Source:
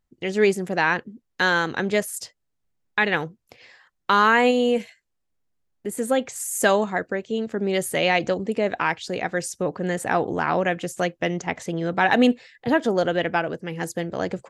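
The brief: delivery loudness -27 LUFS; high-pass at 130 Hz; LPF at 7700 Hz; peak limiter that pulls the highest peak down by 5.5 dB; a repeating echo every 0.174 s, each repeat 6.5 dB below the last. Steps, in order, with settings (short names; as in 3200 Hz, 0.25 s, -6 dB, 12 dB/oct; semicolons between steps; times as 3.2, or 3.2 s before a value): HPF 130 Hz; LPF 7700 Hz; limiter -10 dBFS; feedback echo 0.174 s, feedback 47%, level -6.5 dB; gain -3.5 dB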